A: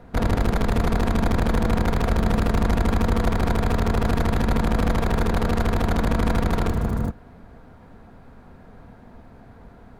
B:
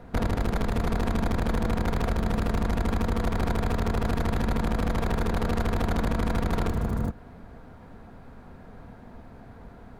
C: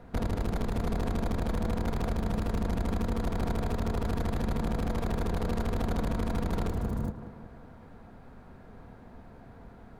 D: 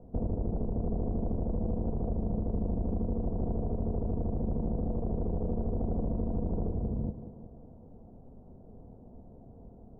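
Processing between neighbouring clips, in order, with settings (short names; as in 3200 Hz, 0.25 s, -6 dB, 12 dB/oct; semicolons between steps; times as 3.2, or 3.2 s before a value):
compressor, threshold -22 dBFS, peak gain reduction 7 dB
tape echo 0.187 s, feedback 63%, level -8 dB, low-pass 1500 Hz; dynamic EQ 1700 Hz, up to -4 dB, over -45 dBFS, Q 0.7; gain -4 dB
inverse Chebyshev low-pass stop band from 3000 Hz, stop band 70 dB; gain -1 dB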